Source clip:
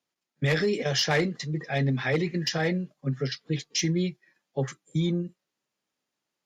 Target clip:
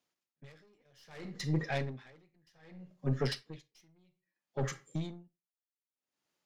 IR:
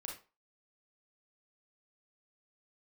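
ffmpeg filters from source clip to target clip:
-filter_complex "[0:a]aeval=exprs='(tanh(20*val(0)+0.5)-tanh(0.5))/20':channel_layout=same,asplit=2[link_01][link_02];[1:a]atrim=start_sample=2205[link_03];[link_02][link_03]afir=irnorm=-1:irlink=0,volume=-5dB[link_04];[link_01][link_04]amix=inputs=2:normalize=0,aeval=exprs='val(0)*pow(10,-40*(0.5-0.5*cos(2*PI*0.63*n/s))/20)':channel_layout=same"

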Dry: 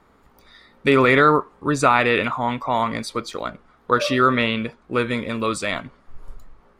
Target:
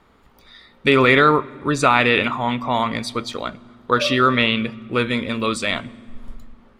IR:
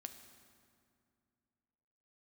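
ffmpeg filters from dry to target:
-filter_complex "[0:a]equalizer=frequency=3200:width_type=o:width=1.1:gain=6.5,asplit=2[link_01][link_02];[1:a]atrim=start_sample=2205,lowshelf=frequency=390:gain=9[link_03];[link_02][link_03]afir=irnorm=-1:irlink=0,volume=-8dB[link_04];[link_01][link_04]amix=inputs=2:normalize=0,volume=-2dB"

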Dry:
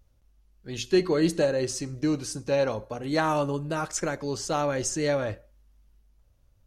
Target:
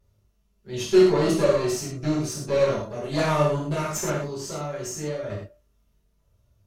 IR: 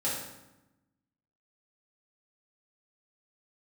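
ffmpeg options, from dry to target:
-filter_complex "[0:a]asettb=1/sr,asplit=3[link_01][link_02][link_03];[link_01]atrim=end=4.144[link_04];[link_02]atrim=start=4.14:end=5.3,asetpts=PTS-STARTPTS,afade=type=in:duration=0.004:curve=qsin,afade=type=out:start_time=1.156:duration=0.004:curve=qsin,acompressor=threshold=-32dB:ratio=6[link_05];[link_03]atrim=start=5.296[link_06];[link_04][link_05]acrossfade=duration=0.004:curve1=hsin:curve2=qsin[link_07];[link_07][link_06]acrossfade=duration=0.004:curve1=qsin:curve2=hsin,aeval=exprs='0.266*(cos(1*acos(clip(val(0)/0.266,-1,1)))-cos(1*PI/2))+0.0376*(cos(6*acos(clip(val(0)/0.266,-1,1)))-cos(6*PI/2))':channel_layout=same[link_08];[1:a]atrim=start_sample=2205,atrim=end_sample=4410,asetrate=32634,aresample=44100[link_09];[link_08][link_09]afir=irnorm=-1:irlink=0,volume=-6.5dB"

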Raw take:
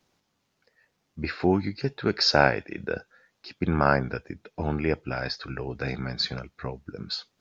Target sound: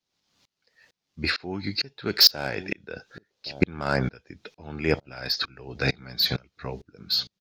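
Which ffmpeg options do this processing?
ffmpeg -i in.wav -filter_complex "[0:a]equalizer=frequency=4300:width=0.76:gain=10.5,acrossover=split=710[link_01][link_02];[link_01]aecho=1:1:1118:0.0794[link_03];[link_02]asoftclip=type=tanh:threshold=-16.5dB[link_04];[link_03][link_04]amix=inputs=2:normalize=0,aeval=exprs='val(0)*pow(10,-29*if(lt(mod(-2.2*n/s,1),2*abs(-2.2)/1000),1-mod(-2.2*n/s,1)/(2*abs(-2.2)/1000),(mod(-2.2*n/s,1)-2*abs(-2.2)/1000)/(1-2*abs(-2.2)/1000))/20)':channel_layout=same,volume=8dB" out.wav

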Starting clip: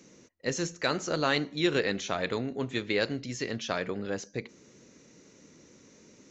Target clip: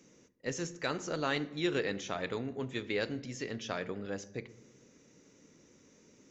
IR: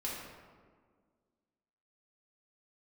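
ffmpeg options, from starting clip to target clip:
-filter_complex "[0:a]bandreject=frequency=4200:width=12,asplit=2[link_01][link_02];[1:a]atrim=start_sample=2205,asetrate=74970,aresample=44100,lowshelf=frequency=290:gain=10.5[link_03];[link_02][link_03]afir=irnorm=-1:irlink=0,volume=-13.5dB[link_04];[link_01][link_04]amix=inputs=2:normalize=0,volume=-6.5dB"

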